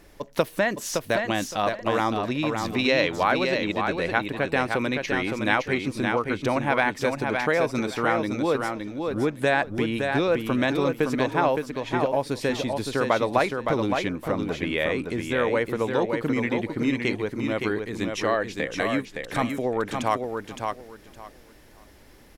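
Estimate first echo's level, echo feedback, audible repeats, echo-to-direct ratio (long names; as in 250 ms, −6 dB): −5.0 dB, 20%, 3, −5.0 dB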